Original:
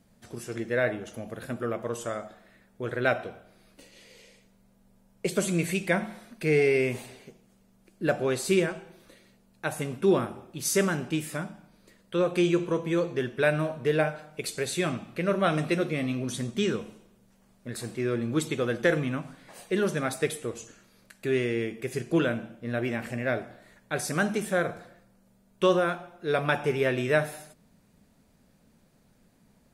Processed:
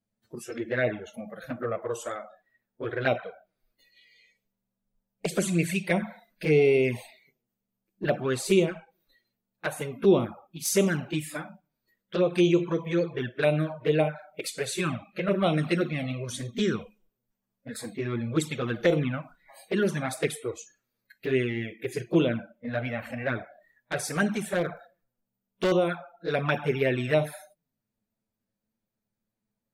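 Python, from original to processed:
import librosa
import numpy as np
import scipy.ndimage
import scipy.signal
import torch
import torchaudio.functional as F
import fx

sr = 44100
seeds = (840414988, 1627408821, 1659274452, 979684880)

y = fx.noise_reduce_blind(x, sr, reduce_db=23)
y = fx.env_flanger(y, sr, rest_ms=9.2, full_db=-20.0)
y = fx.clip_hard(y, sr, threshold_db=-23.5, at=(24.3, 25.72))
y = y * librosa.db_to_amplitude(3.0)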